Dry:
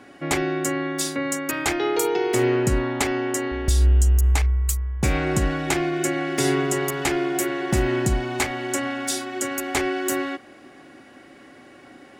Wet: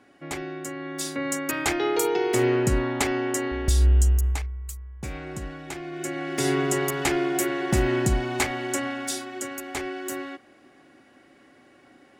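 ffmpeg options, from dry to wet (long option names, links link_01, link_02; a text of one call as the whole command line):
ffmpeg -i in.wav -af "volume=10.5dB,afade=type=in:start_time=0.76:duration=0.61:silence=0.375837,afade=type=out:start_time=4.04:duration=0.45:silence=0.266073,afade=type=in:start_time=5.82:duration=0.88:silence=0.251189,afade=type=out:start_time=8.51:duration=1.12:silence=0.446684" out.wav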